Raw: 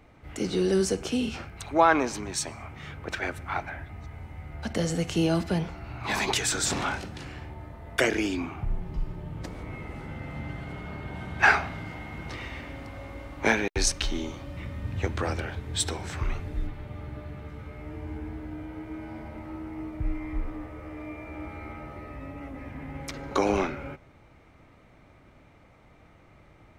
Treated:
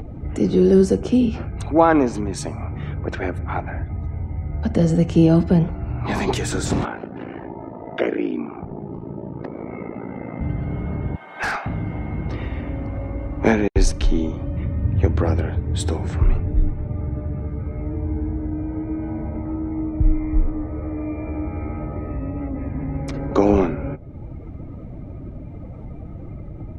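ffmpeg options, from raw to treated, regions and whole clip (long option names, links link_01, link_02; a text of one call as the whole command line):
ffmpeg -i in.wav -filter_complex "[0:a]asettb=1/sr,asplit=3[link_01][link_02][link_03];[link_01]atrim=end=6.854[link_04];[link_02]atrim=start=6.85:end=10.41,asetpts=PTS-STARTPTS,afade=type=in:duration=0.004:curve=qsin,afade=type=out:start_time=3.556:duration=0.004:curve=qsin,highpass=280,lowpass=3000,aeval=exprs='val(0)*sin(2*PI*28*n/s)':channel_layout=same[link_05];[link_03]atrim=start=10.406[link_06];[link_04][link_05]acrossfade=duration=0.004:curve1=hsin:curve2=qsin[link_07];[link_07][link_06]acrossfade=duration=0.004:curve1=qsin:curve2=hsin,asettb=1/sr,asplit=3[link_08][link_09][link_10];[link_08]atrim=end=11.164[link_11];[link_09]atrim=start=11.16:end=11.66,asetpts=PTS-STARTPTS,afade=type=in:duration=0.004:curve=qsin,afade=type=out:start_time=0.496:duration=0.004:curve=qsin,highpass=850,asoftclip=type=hard:threshold=-22dB[link_12];[link_10]atrim=start=11.656[link_13];[link_11][link_12]acrossfade=duration=0.004:curve1=hsin:curve2=qsin[link_14];[link_14][link_13]acrossfade=duration=0.004:curve1=qsin:curve2=hsin,afftdn=noise_reduction=13:noise_floor=-52,tiltshelf=frequency=810:gain=8.5,acompressor=mode=upward:threshold=-26dB:ratio=2.5,volume=4.5dB" out.wav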